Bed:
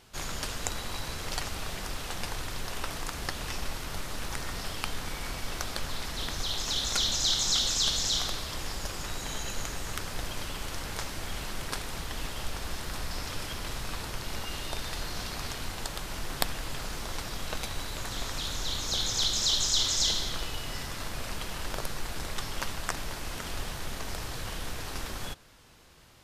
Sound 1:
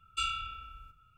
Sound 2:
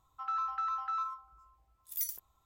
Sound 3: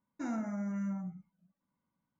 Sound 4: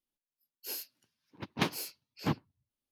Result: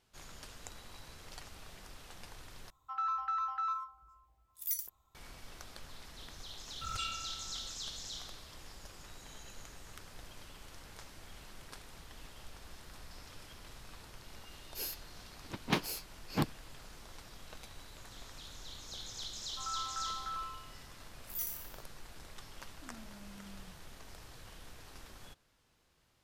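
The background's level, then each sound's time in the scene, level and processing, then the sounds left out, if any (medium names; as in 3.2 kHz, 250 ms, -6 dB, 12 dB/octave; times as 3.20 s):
bed -16 dB
2.70 s: replace with 2 -0.5 dB
6.81 s: add 1 -7.5 dB + swell ahead of each attack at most 26 dB/s
14.11 s: add 4 -1 dB
19.38 s: add 2 -6.5 dB + spectral sustain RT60 0.76 s
22.62 s: add 3 -17.5 dB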